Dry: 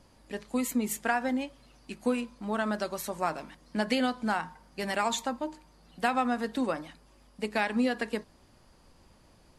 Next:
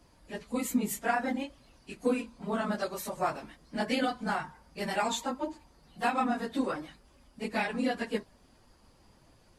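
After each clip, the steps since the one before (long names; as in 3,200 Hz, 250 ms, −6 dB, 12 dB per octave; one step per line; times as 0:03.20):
random phases in long frames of 50 ms
level −1.5 dB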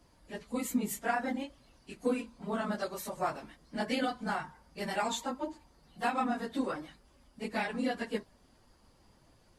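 notch filter 2,500 Hz, Q 29
level −2.5 dB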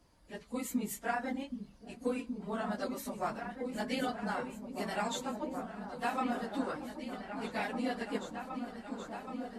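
echo whose low-pass opens from repeat to repeat 774 ms, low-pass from 200 Hz, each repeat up 2 octaves, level −3 dB
level −3 dB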